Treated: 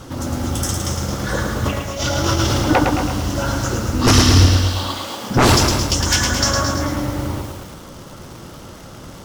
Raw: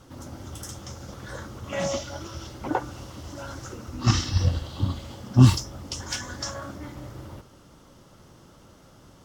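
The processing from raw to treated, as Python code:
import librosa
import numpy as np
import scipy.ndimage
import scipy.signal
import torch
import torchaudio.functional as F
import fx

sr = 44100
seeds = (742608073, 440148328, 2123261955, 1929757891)

y = fx.over_compress(x, sr, threshold_db=-40.0, ratio=-1.0, at=(1.64, 2.67), fade=0.02)
y = fx.highpass(y, sr, hz=fx.line((4.45, 990.0), (5.29, 310.0)), slope=12, at=(4.45, 5.29), fade=0.02)
y = fx.fold_sine(y, sr, drive_db=17, ceiling_db=-2.5)
y = y + 10.0 ** (-11.0 / 20.0) * np.pad(y, (int(238 * sr / 1000.0), 0))[:len(y)]
y = fx.echo_crushed(y, sr, ms=109, feedback_pct=55, bits=5, wet_db=-4)
y = F.gain(torch.from_numpy(y), -6.0).numpy()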